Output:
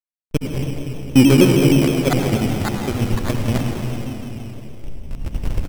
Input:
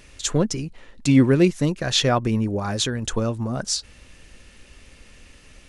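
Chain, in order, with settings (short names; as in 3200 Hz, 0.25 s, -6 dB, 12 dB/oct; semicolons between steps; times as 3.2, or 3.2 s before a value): random spectral dropouts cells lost 54%; recorder AGC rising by 13 dB/s; LPF 1600 Hz 12 dB/oct; notches 60/120/180/240/300/360/420/480 Hz; backlash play -19 dBFS; reverb RT60 3.3 s, pre-delay 64 ms, DRR 1.5 dB; sample-and-hold 16×; frequency-shifting echo 0.104 s, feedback 62%, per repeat +66 Hz, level -14.5 dB; shaped vibrato saw down 6.4 Hz, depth 100 cents; gain +5 dB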